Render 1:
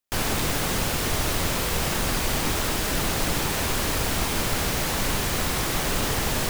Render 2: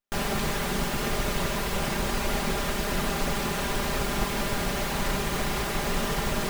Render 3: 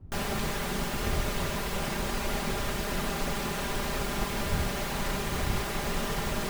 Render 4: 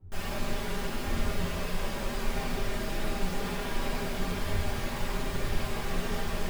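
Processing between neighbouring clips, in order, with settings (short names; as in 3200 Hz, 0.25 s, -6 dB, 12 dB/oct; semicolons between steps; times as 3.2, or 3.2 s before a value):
minimum comb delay 5 ms; high shelf 3300 Hz -8.5 dB; gain +1 dB
wind noise 93 Hz -36 dBFS; gain -3.5 dB
chorus voices 4, 0.36 Hz, delay 10 ms, depth 2.5 ms; reverb RT60 1.3 s, pre-delay 5 ms, DRR -4 dB; gain -5.5 dB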